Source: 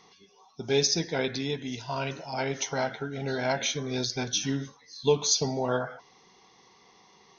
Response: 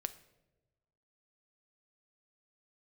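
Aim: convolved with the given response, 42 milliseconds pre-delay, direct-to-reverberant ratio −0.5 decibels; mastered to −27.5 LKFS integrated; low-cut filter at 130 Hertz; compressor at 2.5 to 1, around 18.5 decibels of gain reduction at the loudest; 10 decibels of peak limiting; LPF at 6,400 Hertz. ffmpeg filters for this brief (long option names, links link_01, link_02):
-filter_complex "[0:a]highpass=130,lowpass=6400,acompressor=threshold=-47dB:ratio=2.5,alimiter=level_in=14dB:limit=-24dB:level=0:latency=1,volume=-14dB,asplit=2[link_01][link_02];[1:a]atrim=start_sample=2205,adelay=42[link_03];[link_02][link_03]afir=irnorm=-1:irlink=0,volume=1.5dB[link_04];[link_01][link_04]amix=inputs=2:normalize=0,volume=18dB"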